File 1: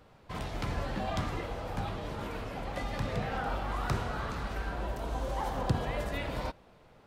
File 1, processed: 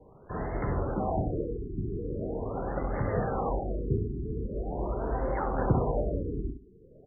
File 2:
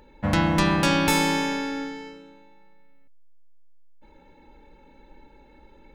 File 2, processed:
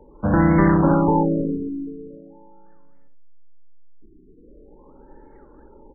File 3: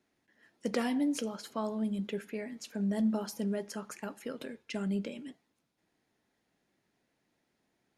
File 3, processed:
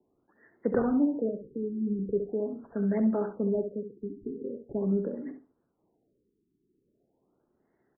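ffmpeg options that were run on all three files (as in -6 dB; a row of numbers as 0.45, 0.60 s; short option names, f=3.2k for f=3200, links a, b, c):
-filter_complex "[0:a]equalizer=f=400:w=2.2:g=7,acrossover=split=170|510|2800[a][b][c][d];[c]acrusher=samples=13:mix=1:aa=0.000001:lfo=1:lforange=20.8:lforate=1.5[e];[a][b][e][d]amix=inputs=4:normalize=0,asplit=2[f][g];[g]adelay=67,lowpass=f=1.4k:p=1,volume=-7.5dB,asplit=2[h][i];[i]adelay=67,lowpass=f=1.4k:p=1,volume=0.21,asplit=2[j][k];[k]adelay=67,lowpass=f=1.4k:p=1,volume=0.21[l];[f][h][j][l]amix=inputs=4:normalize=0,afftfilt=real='re*lt(b*sr/1024,420*pow(2200/420,0.5+0.5*sin(2*PI*0.42*pts/sr)))':imag='im*lt(b*sr/1024,420*pow(2200/420,0.5+0.5*sin(2*PI*0.42*pts/sr)))':win_size=1024:overlap=0.75,volume=3dB"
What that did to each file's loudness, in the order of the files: +3.5, +4.0, +4.5 LU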